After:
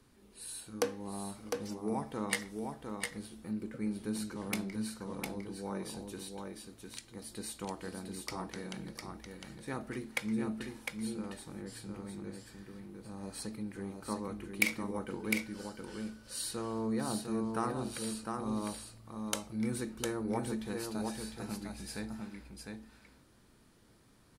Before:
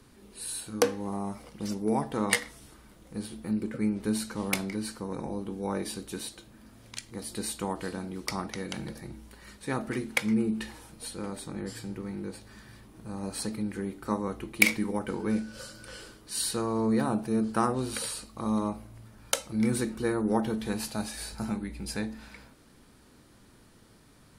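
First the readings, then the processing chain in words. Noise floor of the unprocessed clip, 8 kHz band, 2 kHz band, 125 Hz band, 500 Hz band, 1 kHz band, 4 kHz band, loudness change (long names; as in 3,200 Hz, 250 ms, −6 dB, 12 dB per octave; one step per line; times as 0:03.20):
−57 dBFS, −6.5 dB, −6.5 dB, −6.5 dB, −6.5 dB, −6.5 dB, −6.5 dB, −7.5 dB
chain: single-tap delay 705 ms −4.5 dB
level −8 dB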